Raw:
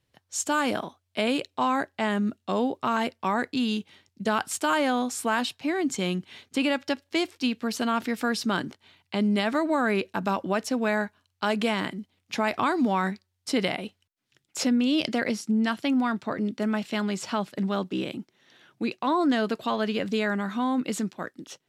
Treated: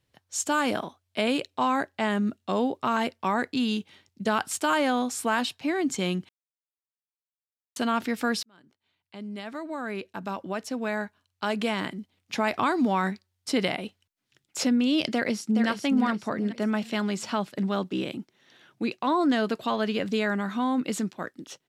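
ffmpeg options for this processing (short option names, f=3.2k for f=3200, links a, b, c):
-filter_complex "[0:a]asplit=2[a][b];[b]afade=t=in:st=15.13:d=0.01,afade=t=out:st=15.68:d=0.01,aecho=0:1:420|840|1260|1680:0.501187|0.175416|0.0613954|0.0214884[c];[a][c]amix=inputs=2:normalize=0,asplit=4[d][e][f][g];[d]atrim=end=6.29,asetpts=PTS-STARTPTS,afade=t=out:st=6.286:d=0.004:c=hsin[h];[e]atrim=start=6.29:end=7.76,asetpts=PTS-STARTPTS,volume=0[i];[f]atrim=start=7.76:end=8.43,asetpts=PTS-STARTPTS,afade=t=in:d=0.004:c=hsin,afade=t=out:st=0.666:d=0.004:c=hsin[j];[g]atrim=start=8.43,asetpts=PTS-STARTPTS,afade=t=in:d=4.02[k];[h][i][j][k]concat=n=4:v=0:a=1"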